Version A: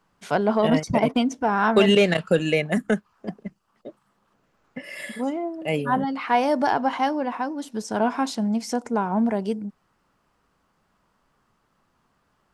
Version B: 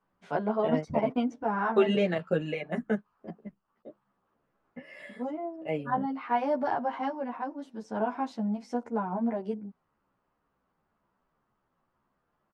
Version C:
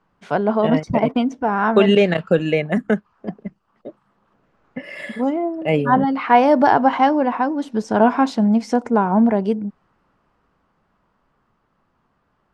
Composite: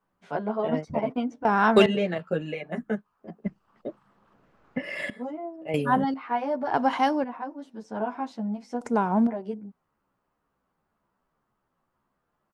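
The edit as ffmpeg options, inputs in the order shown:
-filter_complex "[0:a]asplit=4[a][b][c][d];[1:a]asplit=6[e][f][g][h][i][j];[e]atrim=end=1.452[k];[a]atrim=start=1.448:end=1.862[l];[f]atrim=start=1.858:end=3.442[m];[2:a]atrim=start=3.438:end=5.102[n];[g]atrim=start=5.098:end=5.742[o];[b]atrim=start=5.738:end=6.142[p];[h]atrim=start=6.138:end=6.742[q];[c]atrim=start=6.738:end=7.242[r];[i]atrim=start=7.238:end=8.812[s];[d]atrim=start=8.808:end=9.272[t];[j]atrim=start=9.268[u];[k][l]acrossfade=d=0.004:c1=hsin:c2=hsin[v];[v][m]acrossfade=d=0.004:c1=hsin:c2=hsin[w];[w][n]acrossfade=d=0.004:c1=hsin:c2=hsin[x];[x][o]acrossfade=d=0.004:c1=hsin:c2=hsin[y];[y][p]acrossfade=d=0.004:c1=hsin:c2=hsin[z];[z][q]acrossfade=d=0.004:c1=hsin:c2=hsin[aa];[aa][r]acrossfade=d=0.004:c1=hsin:c2=hsin[ab];[ab][s]acrossfade=d=0.004:c1=hsin:c2=hsin[ac];[ac][t]acrossfade=d=0.004:c1=hsin:c2=hsin[ad];[ad][u]acrossfade=d=0.004:c1=hsin:c2=hsin"

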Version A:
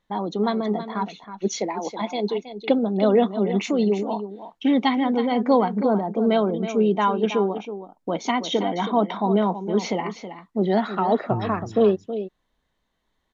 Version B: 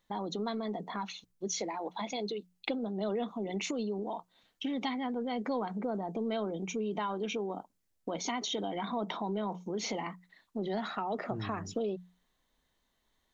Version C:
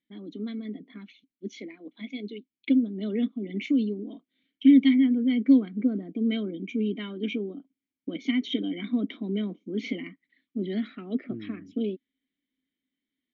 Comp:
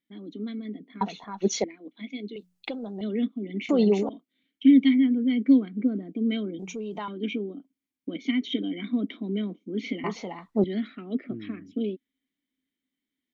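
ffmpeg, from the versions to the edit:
-filter_complex "[0:a]asplit=3[a][b][c];[1:a]asplit=2[d][e];[2:a]asplit=6[f][g][h][i][j][k];[f]atrim=end=1.012[l];[a]atrim=start=1.008:end=1.642[m];[g]atrim=start=1.638:end=2.362[n];[d]atrim=start=2.358:end=3.012[o];[h]atrim=start=3.008:end=3.692[p];[b]atrim=start=3.688:end=4.092[q];[i]atrim=start=4.088:end=6.592[r];[e]atrim=start=6.588:end=7.082[s];[j]atrim=start=7.078:end=10.042[t];[c]atrim=start=10.038:end=10.642[u];[k]atrim=start=10.638[v];[l][m]acrossfade=d=0.004:c1=hsin:c2=hsin[w];[w][n]acrossfade=d=0.004:c1=hsin:c2=hsin[x];[x][o]acrossfade=d=0.004:c1=hsin:c2=hsin[y];[y][p]acrossfade=d=0.004:c1=hsin:c2=hsin[z];[z][q]acrossfade=d=0.004:c1=hsin:c2=hsin[aa];[aa][r]acrossfade=d=0.004:c1=hsin:c2=hsin[ab];[ab][s]acrossfade=d=0.004:c1=hsin:c2=hsin[ac];[ac][t]acrossfade=d=0.004:c1=hsin:c2=hsin[ad];[ad][u]acrossfade=d=0.004:c1=hsin:c2=hsin[ae];[ae][v]acrossfade=d=0.004:c1=hsin:c2=hsin"

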